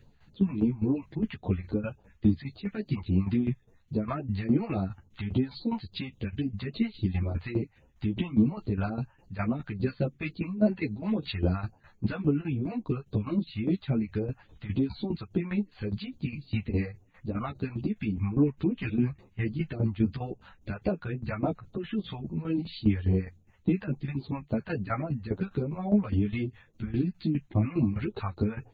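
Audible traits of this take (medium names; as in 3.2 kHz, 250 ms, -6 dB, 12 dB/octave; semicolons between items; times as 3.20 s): phasing stages 2, 3.6 Hz, lowest notch 300–1900 Hz; tremolo saw down 4.9 Hz, depth 80%; a shimmering, thickened sound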